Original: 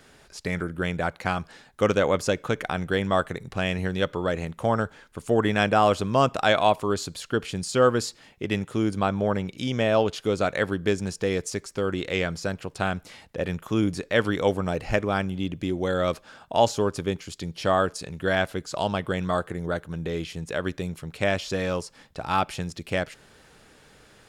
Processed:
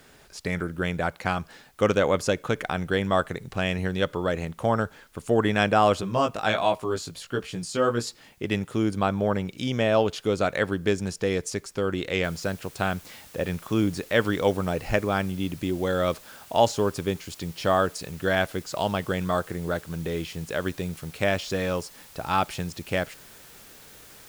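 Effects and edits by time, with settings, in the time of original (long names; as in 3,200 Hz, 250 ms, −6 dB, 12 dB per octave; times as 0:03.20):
0:06.01–0:08.07: chorus effect 1.4 Hz, delay 15.5 ms, depth 3.6 ms
0:12.24: noise floor change −65 dB −50 dB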